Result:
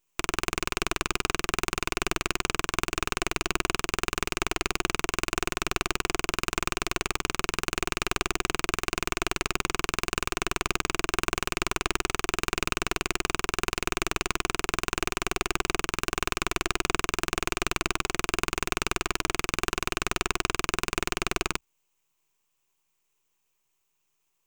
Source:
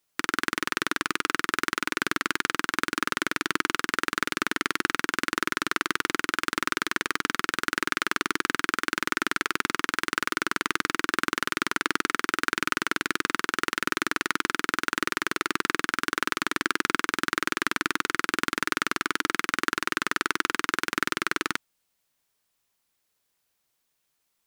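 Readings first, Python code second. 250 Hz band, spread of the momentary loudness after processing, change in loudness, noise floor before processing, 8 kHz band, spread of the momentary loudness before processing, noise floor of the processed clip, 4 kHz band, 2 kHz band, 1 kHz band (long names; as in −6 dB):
−2.0 dB, 1 LU, −1.5 dB, −76 dBFS, +2.5 dB, 1 LU, −76 dBFS, −0.5 dB, −4.5 dB, −2.5 dB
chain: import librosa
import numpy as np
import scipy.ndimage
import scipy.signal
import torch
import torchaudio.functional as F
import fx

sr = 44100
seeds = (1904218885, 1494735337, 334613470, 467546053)

y = fx.ripple_eq(x, sr, per_octave=0.72, db=15)
y = np.maximum(y, 0.0)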